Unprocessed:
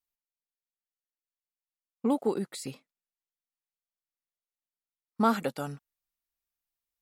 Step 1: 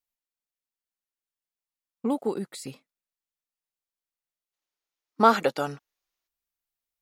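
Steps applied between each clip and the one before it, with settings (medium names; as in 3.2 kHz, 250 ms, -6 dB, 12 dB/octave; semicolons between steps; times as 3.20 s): time-frequency box 4.53–6.28 s, 290–7100 Hz +8 dB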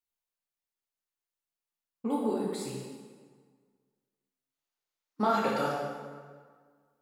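compression, threshold -21 dBFS, peak gain reduction 9 dB; plate-style reverb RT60 1.7 s, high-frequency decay 0.7×, DRR -5 dB; trim -6.5 dB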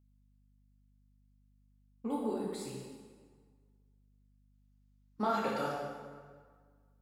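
hum 50 Hz, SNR 26 dB; trim -5 dB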